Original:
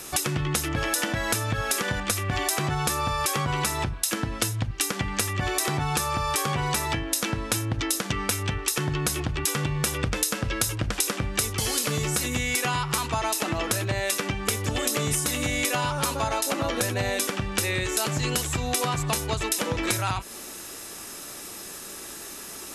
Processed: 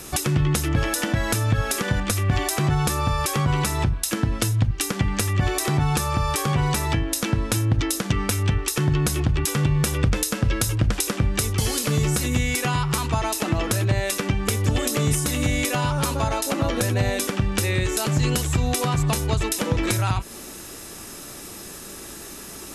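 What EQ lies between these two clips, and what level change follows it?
low shelf 300 Hz +9.5 dB; 0.0 dB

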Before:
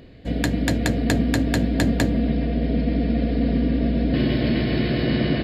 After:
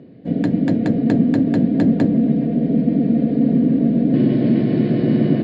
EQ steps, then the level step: HPF 150 Hz 24 dB/oct; air absorption 110 m; tilt shelf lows +9.5 dB, about 690 Hz; 0.0 dB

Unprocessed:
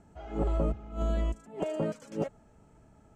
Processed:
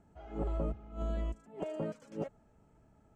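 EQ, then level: high shelf 4200 Hz -5.5 dB; -6.0 dB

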